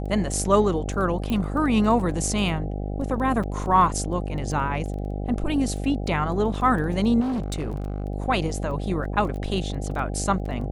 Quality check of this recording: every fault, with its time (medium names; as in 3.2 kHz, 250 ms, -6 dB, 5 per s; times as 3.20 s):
buzz 50 Hz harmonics 16 -29 dBFS
crackle 10 per s -32 dBFS
1.30 s: pop -16 dBFS
3.43–3.44 s: dropout 5.9 ms
7.20–8.04 s: clipped -23.5 dBFS